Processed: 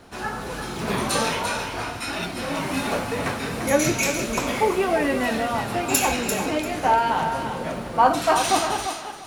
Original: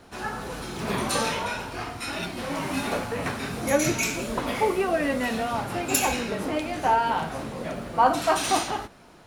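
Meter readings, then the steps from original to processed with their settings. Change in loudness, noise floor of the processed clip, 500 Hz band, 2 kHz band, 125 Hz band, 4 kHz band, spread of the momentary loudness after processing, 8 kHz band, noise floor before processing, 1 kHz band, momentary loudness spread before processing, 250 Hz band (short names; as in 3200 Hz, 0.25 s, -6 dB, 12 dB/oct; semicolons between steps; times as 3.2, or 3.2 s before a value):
+3.0 dB, -34 dBFS, +3.0 dB, +3.5 dB, +2.5 dB, +3.5 dB, 9 LU, +3.5 dB, -50 dBFS, +3.0 dB, 11 LU, +3.0 dB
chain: thinning echo 0.344 s, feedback 23%, level -7 dB; gain +2.5 dB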